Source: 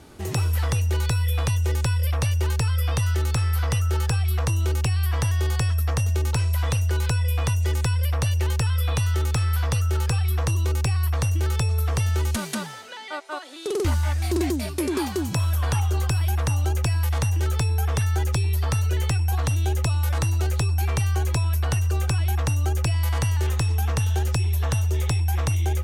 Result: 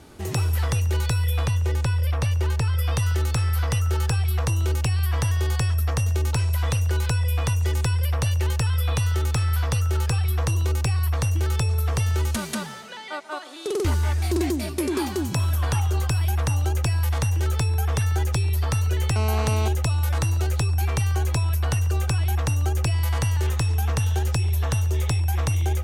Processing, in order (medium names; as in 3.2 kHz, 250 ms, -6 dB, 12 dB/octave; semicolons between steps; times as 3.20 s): 1.46–2.79 s: treble shelf 5 kHz -7 dB; tape echo 139 ms, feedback 67%, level -16 dB, low-pass 2 kHz; 19.16–19.68 s: mobile phone buzz -29 dBFS